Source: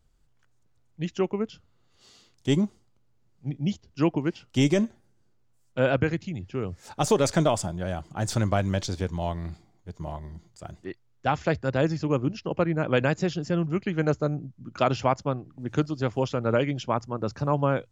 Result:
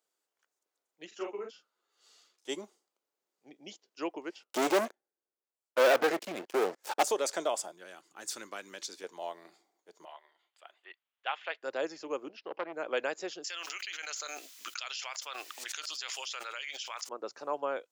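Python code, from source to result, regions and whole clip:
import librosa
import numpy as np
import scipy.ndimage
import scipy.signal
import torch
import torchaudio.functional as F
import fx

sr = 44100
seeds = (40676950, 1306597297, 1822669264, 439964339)

y = fx.chain(x, sr, fx.peak_eq(hz=1400.0, db=4.5, octaves=0.48),
    fx.doubler(ms=41.0, db=-3.5),
    fx.ensemble(), at=(1.07, 2.49))
y = fx.chain(y, sr, fx.highpass(hz=120.0, slope=12),
    fx.high_shelf(hz=2900.0, db=-9.5),
    fx.leveller(passes=5), at=(4.43, 7.03))
y = fx.chain(y, sr, fx.peak_eq(hz=660.0, db=-13.5, octaves=1.1),
    fx.notch(hz=3200.0, q=18.0), at=(7.72, 9.04))
y = fx.chain(y, sr, fx.highpass(hz=880.0, slope=12),
    fx.high_shelf_res(hz=4300.0, db=-11.5, q=3.0), at=(10.05, 11.63))
y = fx.chain(y, sr, fx.lowpass(hz=4300.0, slope=24),
    fx.transformer_sat(knee_hz=1000.0), at=(12.29, 12.73))
y = fx.chain(y, sr, fx.cheby1_highpass(hz=2900.0, order=2),
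    fx.env_flatten(amount_pct=100), at=(13.44, 17.09))
y = scipy.signal.sosfilt(scipy.signal.butter(4, 380.0, 'highpass', fs=sr, output='sos'), y)
y = fx.high_shelf(y, sr, hz=8000.0, db=9.0)
y = y * 10.0 ** (-7.5 / 20.0)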